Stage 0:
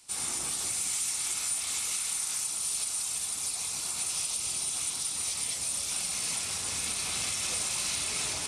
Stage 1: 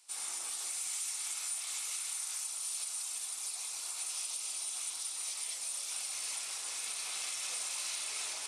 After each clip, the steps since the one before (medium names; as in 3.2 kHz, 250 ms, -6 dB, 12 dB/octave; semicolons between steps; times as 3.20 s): high-pass 590 Hz 12 dB/octave; trim -6.5 dB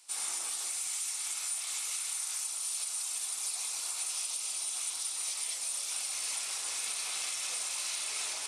gain riding; trim +3 dB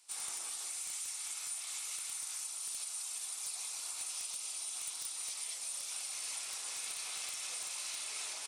integer overflow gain 24.5 dB; delay 223 ms -23.5 dB; trim -5.5 dB